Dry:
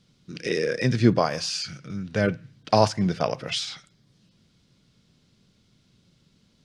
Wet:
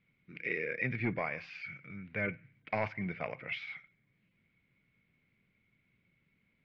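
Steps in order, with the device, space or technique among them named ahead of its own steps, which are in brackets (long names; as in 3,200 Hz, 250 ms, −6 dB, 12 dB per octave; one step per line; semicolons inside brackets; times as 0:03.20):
overdriven synthesiser ladder filter (soft clipping −11 dBFS, distortion −14 dB; transistor ladder low-pass 2,300 Hz, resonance 85%)
level −1 dB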